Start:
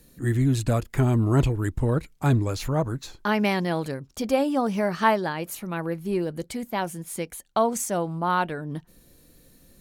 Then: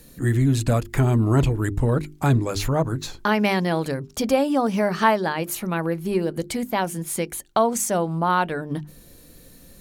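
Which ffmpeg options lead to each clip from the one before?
-filter_complex "[0:a]bandreject=f=50:t=h:w=6,bandreject=f=100:t=h:w=6,bandreject=f=150:t=h:w=6,bandreject=f=200:t=h:w=6,bandreject=f=250:t=h:w=6,bandreject=f=300:t=h:w=6,bandreject=f=350:t=h:w=6,bandreject=f=400:t=h:w=6,asplit=2[a][b];[b]acompressor=threshold=-30dB:ratio=6,volume=2.5dB[c];[a][c]amix=inputs=2:normalize=0"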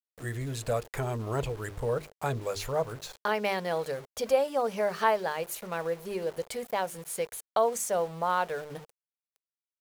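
-af "aeval=exprs='val(0)*gte(abs(val(0)),0.0178)':c=same,lowshelf=f=380:t=q:w=3:g=-6.5,volume=-8dB"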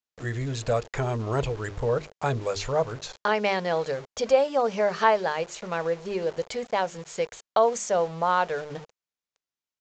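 -af "aresample=16000,aresample=44100,volume=4.5dB"

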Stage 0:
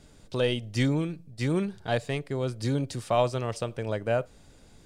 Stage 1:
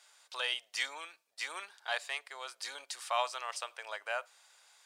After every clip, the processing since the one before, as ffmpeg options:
-af "highpass=f=890:w=0.5412,highpass=f=890:w=1.3066"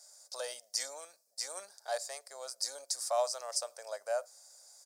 -af "firequalizer=gain_entry='entry(120,0);entry(210,9);entry(320,-2);entry(570,14);entry(940,-2);entry(1600,-4);entry(2900,-15);entry(4900,14)':delay=0.05:min_phase=1,volume=-5dB"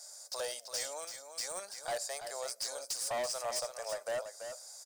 -filter_complex "[0:a]asplit=2[a][b];[b]acompressor=threshold=-46dB:ratio=4,volume=2dB[c];[a][c]amix=inputs=2:normalize=0,asoftclip=type=hard:threshold=-32.5dB,aecho=1:1:334:0.376"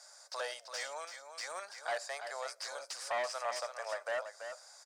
-af "bandpass=f=1.5k:t=q:w=1:csg=0,volume=6dB"

